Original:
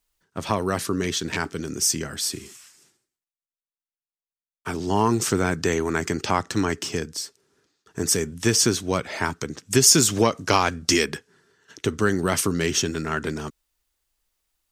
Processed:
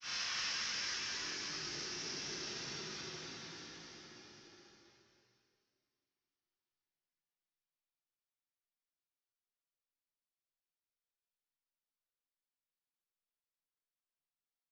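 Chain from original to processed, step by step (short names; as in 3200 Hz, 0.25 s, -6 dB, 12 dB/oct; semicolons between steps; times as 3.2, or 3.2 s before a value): steep low-pass 6000 Hz 72 dB/oct; gate with hold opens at -59 dBFS; Paulstretch 12×, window 0.25 s, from 2.65; in parallel at -3 dB: limiter -52.5 dBFS, peak gain reduction 11 dB; on the sum: grains 0.168 s, grains 20/s, spray 29 ms, pitch spread up and down by 0 st; on a send: loudspeakers at several distances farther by 24 m -2 dB, 94 m -1 dB; on the sum: gain +13.5 dB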